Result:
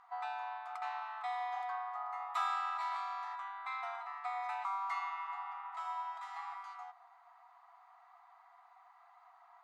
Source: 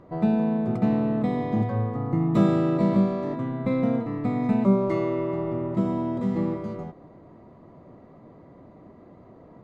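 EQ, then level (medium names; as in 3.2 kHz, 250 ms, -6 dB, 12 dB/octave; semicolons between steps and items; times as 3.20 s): brick-wall FIR high-pass 690 Hz; peaking EQ 1.3 kHz +5.5 dB 0.38 oct; -3.0 dB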